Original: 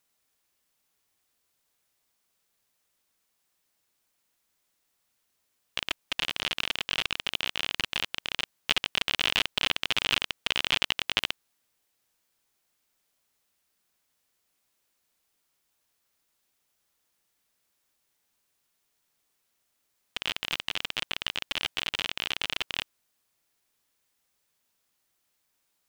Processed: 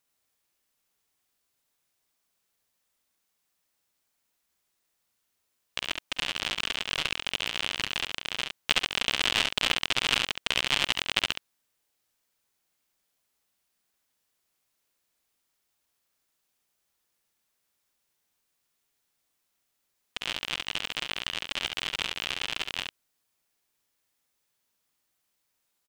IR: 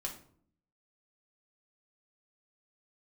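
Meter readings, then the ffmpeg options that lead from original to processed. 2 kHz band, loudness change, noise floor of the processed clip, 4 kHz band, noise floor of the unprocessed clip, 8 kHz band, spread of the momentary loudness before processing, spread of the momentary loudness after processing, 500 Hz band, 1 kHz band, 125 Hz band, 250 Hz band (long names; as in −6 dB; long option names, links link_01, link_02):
+0.5 dB, +0.5 dB, −78 dBFS, +0.5 dB, −76 dBFS, +3.5 dB, 7 LU, 9 LU, +1.5 dB, +1.5 dB, +1.5 dB, +1.5 dB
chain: -af "aecho=1:1:47|69:0.168|0.631,aeval=exprs='0.841*(cos(1*acos(clip(val(0)/0.841,-1,1)))-cos(1*PI/2))+0.0473*(cos(7*acos(clip(val(0)/0.841,-1,1)))-cos(7*PI/2))':channel_layout=same,volume=1dB"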